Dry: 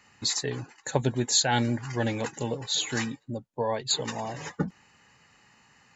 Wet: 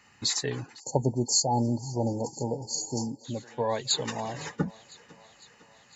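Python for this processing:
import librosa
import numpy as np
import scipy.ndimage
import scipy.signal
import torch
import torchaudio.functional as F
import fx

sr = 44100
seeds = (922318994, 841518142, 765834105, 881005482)

y = fx.echo_thinned(x, sr, ms=505, feedback_pct=68, hz=280.0, wet_db=-21.5)
y = fx.spec_erase(y, sr, start_s=0.8, length_s=2.45, low_hz=980.0, high_hz=4300.0)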